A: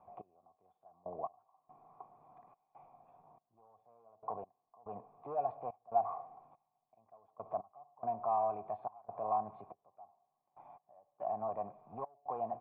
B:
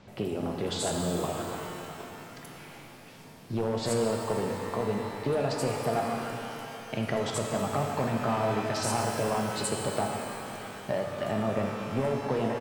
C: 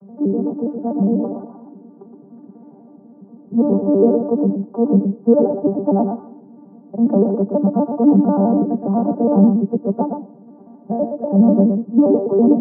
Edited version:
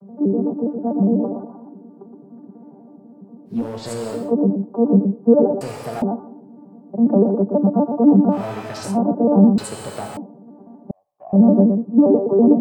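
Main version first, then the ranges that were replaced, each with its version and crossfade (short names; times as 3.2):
C
3.57–4.22 from B, crossfade 0.24 s
5.61–6.02 from B
8.37–8.91 from B, crossfade 0.16 s
9.58–10.17 from B
10.91–11.33 from A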